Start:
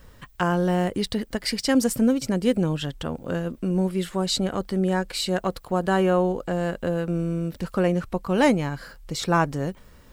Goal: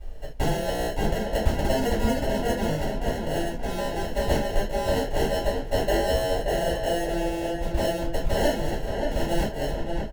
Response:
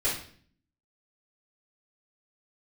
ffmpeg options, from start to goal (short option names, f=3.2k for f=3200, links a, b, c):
-filter_complex "[0:a]equalizer=f=170:t=o:w=2.7:g=-13.5,acompressor=threshold=-30dB:ratio=2.5,acrusher=samples=37:mix=1:aa=0.000001,asplit=2[a][b];[b]adelay=577,lowpass=f=2.7k:p=1,volume=-4.5dB,asplit=2[c][d];[d]adelay=577,lowpass=f=2.7k:p=1,volume=0.4,asplit=2[e][f];[f]adelay=577,lowpass=f=2.7k:p=1,volume=0.4,asplit=2[g][h];[h]adelay=577,lowpass=f=2.7k:p=1,volume=0.4,asplit=2[i][j];[j]adelay=577,lowpass=f=2.7k:p=1,volume=0.4[k];[a][c][e][g][i][k]amix=inputs=6:normalize=0[l];[1:a]atrim=start_sample=2205,afade=t=out:st=0.17:d=0.01,atrim=end_sample=7938,asetrate=61740,aresample=44100[m];[l][m]afir=irnorm=-1:irlink=0"